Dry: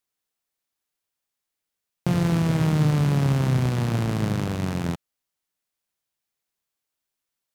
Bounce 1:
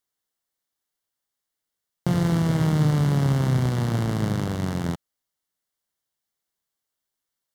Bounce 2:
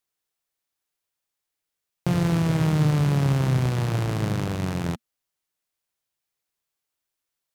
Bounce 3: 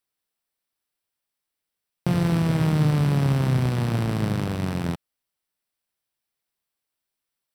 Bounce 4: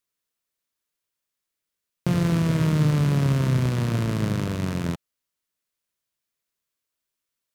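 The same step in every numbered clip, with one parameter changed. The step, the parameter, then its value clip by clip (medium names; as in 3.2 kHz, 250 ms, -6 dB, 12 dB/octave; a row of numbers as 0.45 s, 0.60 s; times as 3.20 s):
band-stop, frequency: 2.5 kHz, 230 Hz, 6.7 kHz, 790 Hz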